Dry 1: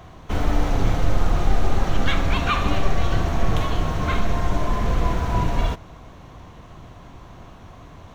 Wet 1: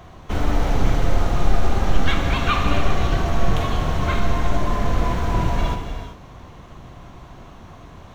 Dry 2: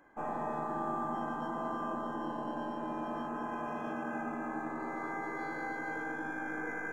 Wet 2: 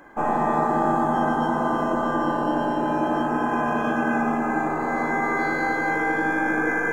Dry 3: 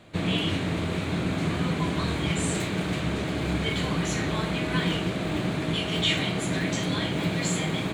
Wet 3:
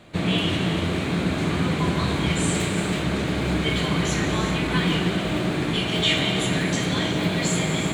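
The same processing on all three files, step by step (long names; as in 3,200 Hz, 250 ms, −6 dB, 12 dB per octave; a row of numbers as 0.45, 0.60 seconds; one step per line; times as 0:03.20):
reverb whose tail is shaped and stops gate 430 ms flat, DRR 5 dB
loudness normalisation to −23 LKFS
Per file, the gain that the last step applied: +0.5, +14.0, +3.0 decibels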